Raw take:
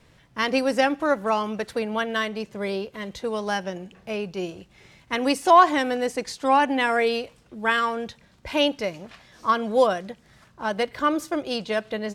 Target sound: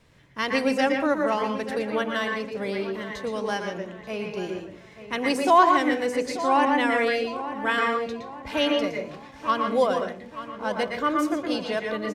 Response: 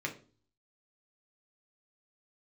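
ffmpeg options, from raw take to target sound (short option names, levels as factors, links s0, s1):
-filter_complex "[0:a]asplit=2[s0][s1];[s1]adelay=885,lowpass=f=3100:p=1,volume=0.237,asplit=2[s2][s3];[s3]adelay=885,lowpass=f=3100:p=1,volume=0.43,asplit=2[s4][s5];[s5]adelay=885,lowpass=f=3100:p=1,volume=0.43,asplit=2[s6][s7];[s7]adelay=885,lowpass=f=3100:p=1,volume=0.43[s8];[s0][s2][s4][s6][s8]amix=inputs=5:normalize=0,asplit=2[s9][s10];[1:a]atrim=start_sample=2205,adelay=115[s11];[s10][s11]afir=irnorm=-1:irlink=0,volume=0.531[s12];[s9][s12]amix=inputs=2:normalize=0,volume=0.708"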